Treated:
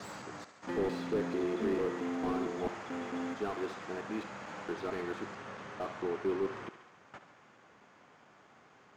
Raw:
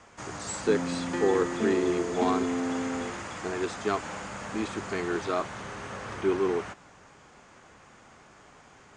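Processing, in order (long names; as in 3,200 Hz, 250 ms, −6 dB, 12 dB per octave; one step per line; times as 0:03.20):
slices reordered back to front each 223 ms, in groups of 3
high-pass filter 130 Hz 12 dB per octave
high-frequency loss of the air 110 metres
feedback echo with a high-pass in the loop 70 ms, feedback 74%, high-pass 430 Hz, level −11.5 dB
slew-rate limiting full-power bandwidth 36 Hz
level −6 dB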